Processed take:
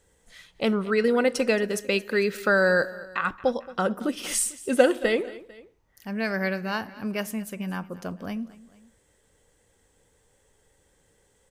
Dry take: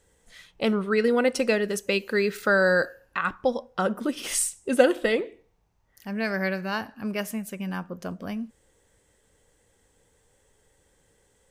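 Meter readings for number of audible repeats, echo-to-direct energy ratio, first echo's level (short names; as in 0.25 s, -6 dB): 2, -18.0 dB, -19.0 dB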